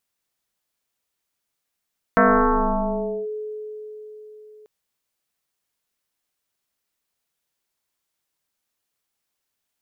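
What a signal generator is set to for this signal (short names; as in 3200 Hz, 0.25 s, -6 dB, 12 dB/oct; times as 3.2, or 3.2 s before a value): FM tone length 2.49 s, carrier 427 Hz, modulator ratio 0.53, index 5.4, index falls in 1.10 s linear, decay 4.45 s, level -11 dB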